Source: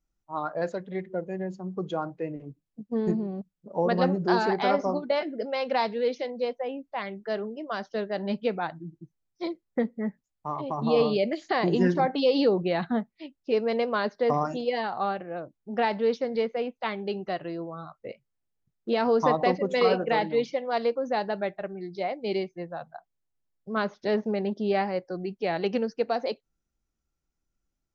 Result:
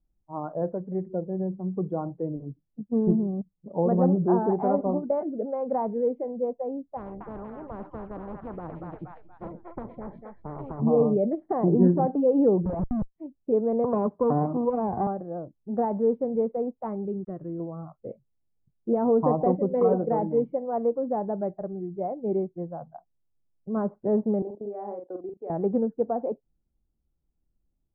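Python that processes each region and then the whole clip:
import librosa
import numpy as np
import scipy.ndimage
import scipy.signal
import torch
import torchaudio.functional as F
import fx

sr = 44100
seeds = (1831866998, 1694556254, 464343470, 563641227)

y = fx.chain(x, sr, fx.echo_stepped(ms=236, hz=1800.0, octaves=0.7, feedback_pct=70, wet_db=-5.5),
    fx.spectral_comp(ratio=10.0), at=(6.97, 10.8))
y = fx.chain(y, sr, fx.peak_eq(hz=5000.0, db=-10.0, octaves=1.8),
    fx.fixed_phaser(hz=380.0, stages=6),
    fx.schmitt(flips_db=-32.5), at=(12.65, 13.16))
y = fx.chain(y, sr, fx.lower_of_two(delay_ms=0.36),
    fx.cabinet(low_hz=130.0, low_slope=12, high_hz=3400.0, hz=(770.0, 1100.0, 1900.0), db=(4, 10, -7)),
    fx.band_squash(depth_pct=70), at=(13.84, 15.07))
y = fx.chain(y, sr, fx.sample_gate(floor_db=-53.5),
    fx.peak_eq(hz=770.0, db=-15.0, octaves=0.97), at=(17.05, 17.6))
y = fx.chain(y, sr, fx.highpass(hz=310.0, slope=24),
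    fx.level_steps(step_db=18),
    fx.doubler(ms=44.0, db=-4.5), at=(24.42, 25.5))
y = scipy.signal.sosfilt(scipy.signal.butter(4, 1000.0, 'lowpass', fs=sr, output='sos'), y)
y = fx.low_shelf(y, sr, hz=400.0, db=10.5)
y = F.gain(torch.from_numpy(y), -3.5).numpy()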